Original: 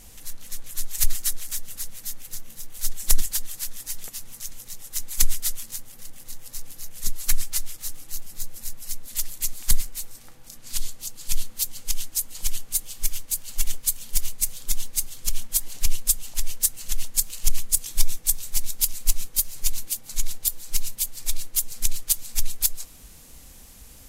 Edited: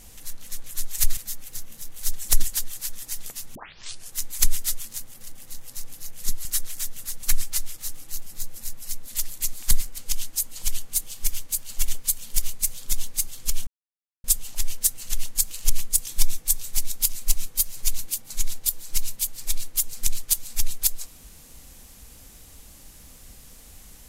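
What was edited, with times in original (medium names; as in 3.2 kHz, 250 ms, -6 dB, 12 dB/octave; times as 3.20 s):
1.17–1.95 s: move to 7.23 s
4.33 s: tape start 0.57 s
9.98–11.77 s: delete
15.46–16.03 s: mute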